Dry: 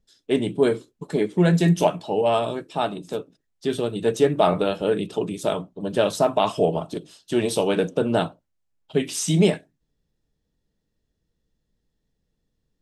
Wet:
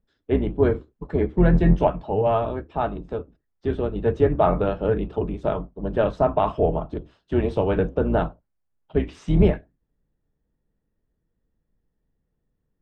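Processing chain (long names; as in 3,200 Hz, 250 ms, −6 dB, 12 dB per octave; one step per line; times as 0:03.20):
sub-octave generator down 2 octaves, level 0 dB
Chebyshev low-pass filter 1,500 Hz, order 2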